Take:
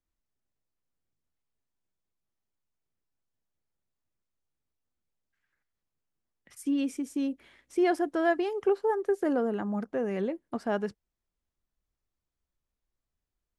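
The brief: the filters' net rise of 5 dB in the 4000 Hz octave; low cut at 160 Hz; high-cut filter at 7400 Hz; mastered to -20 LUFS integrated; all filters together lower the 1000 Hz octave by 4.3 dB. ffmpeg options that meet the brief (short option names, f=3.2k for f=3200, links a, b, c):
-af "highpass=160,lowpass=7.4k,equalizer=f=1k:t=o:g=-7.5,equalizer=f=4k:t=o:g=8,volume=11dB"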